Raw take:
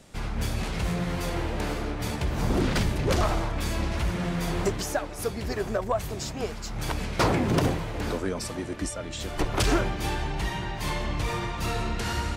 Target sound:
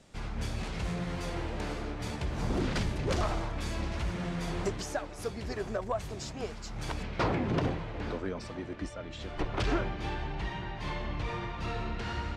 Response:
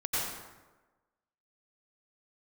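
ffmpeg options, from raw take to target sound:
-af "asetnsamples=n=441:p=0,asendcmd='7.03 lowpass f 3800',lowpass=8.3k,volume=-6dB"

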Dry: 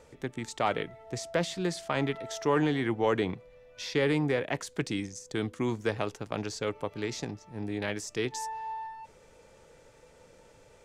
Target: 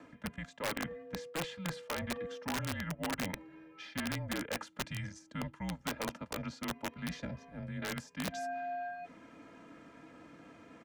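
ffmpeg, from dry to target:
-filter_complex "[0:a]acrossover=split=270 2900:gain=0.224 1 0.126[a][b][c];[a][b][c]amix=inputs=3:normalize=0,acrossover=split=390[d][e];[d]crystalizer=i=5:c=0[f];[f][e]amix=inputs=2:normalize=0,aecho=1:1:2.7:0.96,areverse,acompressor=threshold=-40dB:ratio=4,areverse,afreqshift=-180,aeval=exprs='(mod(39.8*val(0)+1,2)-1)/39.8':c=same,lowshelf=f=250:g=-5,volume=4.5dB"

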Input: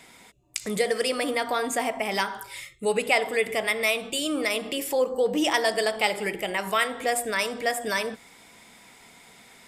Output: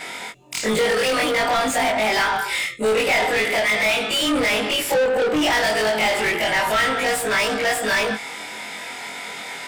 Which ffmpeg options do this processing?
-filter_complex "[0:a]afftfilt=real='re':imag='-im':win_size=2048:overlap=0.75,asoftclip=type=tanh:threshold=-23.5dB,asuperstop=centerf=1100:order=8:qfactor=7.7,asplit=2[a][b];[b]highpass=f=720:p=1,volume=25dB,asoftclip=type=tanh:threshold=-19.5dB[c];[a][c]amix=inputs=2:normalize=0,lowpass=f=3.2k:p=1,volume=-6dB,adynamicequalizer=threshold=0.0141:dfrequency=440:dqfactor=1.5:tfrequency=440:tqfactor=1.5:attack=5:release=100:ratio=0.375:range=2.5:mode=cutabove:tftype=bell,volume=8dB"

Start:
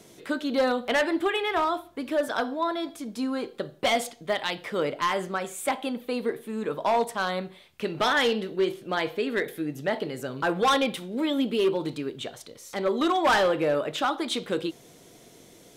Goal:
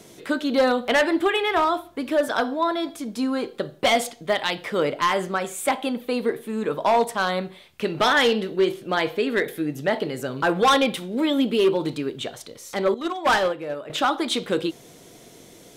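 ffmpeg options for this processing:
-filter_complex "[0:a]asettb=1/sr,asplit=3[a][b][c];[a]atrim=end=12.944[d];[b]atrim=start=12.94:end=13.9,asetpts=PTS-STARTPTS,afade=t=in:d=0.004:c=qsin,afade=t=out:st=0.956:d=0.004:c=qsin,agate=range=-12dB:threshold=-21dB:ratio=16:detection=peak[e];[c]atrim=start=13.896[f];[d][e]acrossfade=d=0.004:c1=hsin:c2=qsin[g];[g][f]acrossfade=d=0.004:c1=qsin:c2=hsin,volume=4.5dB"

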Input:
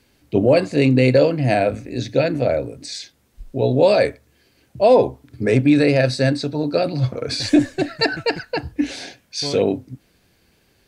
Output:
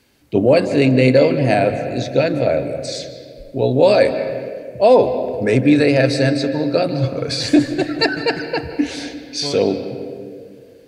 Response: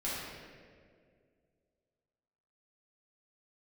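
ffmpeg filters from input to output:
-filter_complex "[0:a]lowshelf=f=87:g=-7,asplit=2[a][b];[1:a]atrim=start_sample=2205,lowpass=5.2k,adelay=149[c];[b][c]afir=irnorm=-1:irlink=0,volume=-14.5dB[d];[a][d]amix=inputs=2:normalize=0,volume=2dB"

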